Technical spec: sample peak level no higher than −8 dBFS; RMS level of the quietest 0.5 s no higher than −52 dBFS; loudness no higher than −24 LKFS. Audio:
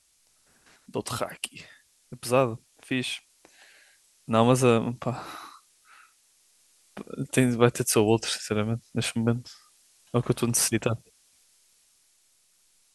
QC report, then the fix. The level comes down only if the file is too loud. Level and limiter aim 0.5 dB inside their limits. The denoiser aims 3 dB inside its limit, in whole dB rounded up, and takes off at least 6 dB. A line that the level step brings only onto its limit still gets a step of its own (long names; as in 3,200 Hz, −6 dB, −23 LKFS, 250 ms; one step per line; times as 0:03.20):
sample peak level −4.0 dBFS: out of spec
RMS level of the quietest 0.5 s −65 dBFS: in spec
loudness −26.0 LKFS: in spec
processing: brickwall limiter −8.5 dBFS